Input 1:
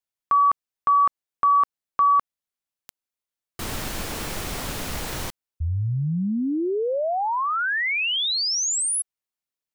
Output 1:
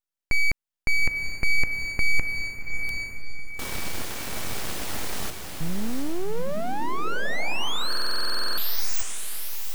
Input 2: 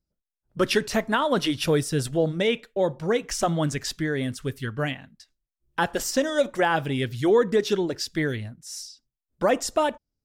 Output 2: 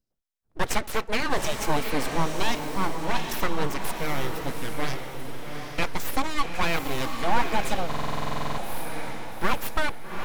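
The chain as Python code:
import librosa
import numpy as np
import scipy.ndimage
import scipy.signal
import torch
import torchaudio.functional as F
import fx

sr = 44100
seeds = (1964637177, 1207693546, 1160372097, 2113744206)

y = np.abs(x)
y = fx.echo_diffused(y, sr, ms=806, feedback_pct=41, wet_db=-5)
y = fx.buffer_glitch(y, sr, at_s=(7.88,), block=2048, repeats=14)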